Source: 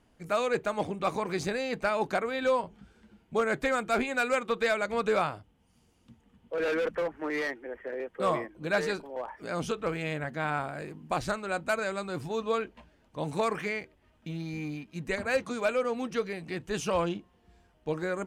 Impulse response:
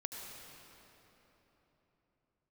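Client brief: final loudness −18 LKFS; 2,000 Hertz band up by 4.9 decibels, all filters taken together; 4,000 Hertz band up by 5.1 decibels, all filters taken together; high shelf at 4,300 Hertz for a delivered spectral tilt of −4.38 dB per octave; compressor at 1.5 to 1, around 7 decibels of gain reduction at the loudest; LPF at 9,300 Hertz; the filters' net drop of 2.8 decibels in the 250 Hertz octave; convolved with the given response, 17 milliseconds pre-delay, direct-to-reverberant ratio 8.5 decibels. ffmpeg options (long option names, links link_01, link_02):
-filter_complex "[0:a]lowpass=9300,equalizer=frequency=250:width_type=o:gain=-4,equalizer=frequency=2000:width_type=o:gain=6,equalizer=frequency=4000:width_type=o:gain=6.5,highshelf=frequency=4300:gain=-4.5,acompressor=threshold=-41dB:ratio=1.5,asplit=2[link_01][link_02];[1:a]atrim=start_sample=2205,adelay=17[link_03];[link_02][link_03]afir=irnorm=-1:irlink=0,volume=-8dB[link_04];[link_01][link_04]amix=inputs=2:normalize=0,volume=17dB"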